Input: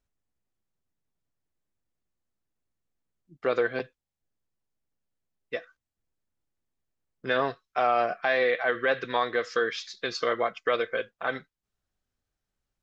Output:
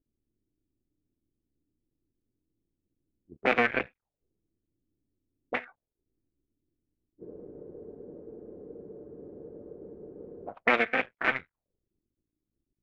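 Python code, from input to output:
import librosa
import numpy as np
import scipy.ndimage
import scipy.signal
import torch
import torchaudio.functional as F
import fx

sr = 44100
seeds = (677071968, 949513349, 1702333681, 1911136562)

y = fx.cycle_switch(x, sr, every=2, mode='muted')
y = fx.spec_freeze(y, sr, seeds[0], at_s=7.21, hold_s=3.28)
y = fx.envelope_lowpass(y, sr, base_hz=310.0, top_hz=2300.0, q=4.0, full_db=-35.5, direction='up')
y = y * 10.0 ** (1.5 / 20.0)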